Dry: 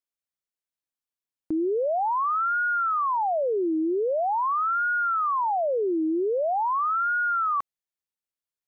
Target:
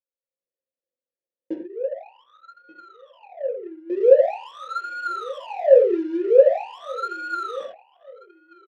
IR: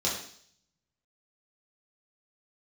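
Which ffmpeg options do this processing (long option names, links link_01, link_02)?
-filter_complex "[0:a]bandreject=frequency=50:width_type=h:width=6,bandreject=frequency=100:width_type=h:width=6,bandreject=frequency=150:width_type=h:width=6,asettb=1/sr,asplit=3[link_01][link_02][link_03];[link_01]atrim=end=1.534[link_04];[link_02]atrim=start=1.53:end=3.9,asetpts=PTS-STARTPTS,afade=type=in:duration=0.004:curve=qsin,afade=type=out:start_time=2.366:duration=0.004:curve=qsin,agate=range=-33dB:threshold=-13dB:ratio=3:detection=peak[link_05];[link_03]atrim=start=3.896[link_06];[link_04][link_05]acrossfade=duration=0.004:curve1=hsin:curve2=qsin[link_07];[link_07][link_06]acrossfade=duration=0.004:curve1=qsin:curve2=hsin,equalizer=frequency=260:width_type=o:width=0.77:gain=5.5,asoftclip=type=tanh:threshold=-20dB,acrusher=bits=7:mode=log:mix=0:aa=0.000001,aecho=1:1:1183|2366:0.0708|0.0191[link_08];[1:a]atrim=start_sample=2205,afade=type=out:start_time=0.18:duration=0.01,atrim=end_sample=8379[link_09];[link_08][link_09]afir=irnorm=-1:irlink=0,adynamicsmooth=sensitivity=4:basefreq=880,asplit=3[link_10][link_11][link_12];[link_10]bandpass=frequency=530:width_type=q:width=8,volume=0dB[link_13];[link_11]bandpass=frequency=1840:width_type=q:width=8,volume=-6dB[link_14];[link_12]bandpass=frequency=2480:width_type=q:width=8,volume=-9dB[link_15];[link_13][link_14][link_15]amix=inputs=3:normalize=0,dynaudnorm=framelen=250:gausssize=3:maxgain=9dB"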